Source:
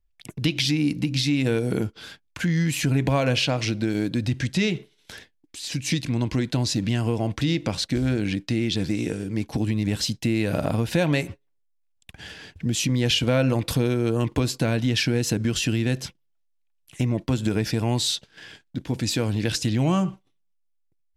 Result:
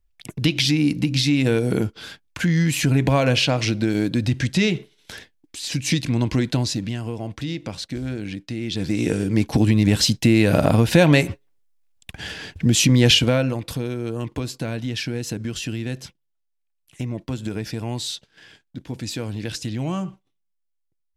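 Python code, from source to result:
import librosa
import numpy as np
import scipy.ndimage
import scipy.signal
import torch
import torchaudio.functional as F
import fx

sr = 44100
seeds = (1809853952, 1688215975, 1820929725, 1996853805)

y = fx.gain(x, sr, db=fx.line((6.51, 3.5), (7.0, -5.0), (8.57, -5.0), (9.16, 7.5), (13.11, 7.5), (13.6, -4.5)))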